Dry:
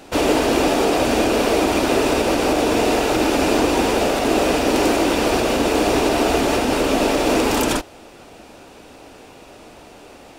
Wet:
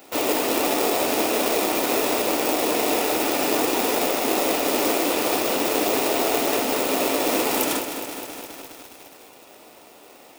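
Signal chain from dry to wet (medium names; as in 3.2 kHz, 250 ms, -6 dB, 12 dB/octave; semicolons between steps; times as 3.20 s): peaking EQ 7.7 kHz -11 dB 2.6 oct; in parallel at -11 dB: sample-rate reducer 1.5 kHz, jitter 0%; on the sum: high-pass 100 Hz 6 dB/octave; RIAA curve recording; band-stop 1.6 kHz, Q 12; bit-crushed delay 207 ms, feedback 80%, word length 6-bit, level -9 dB; trim -3.5 dB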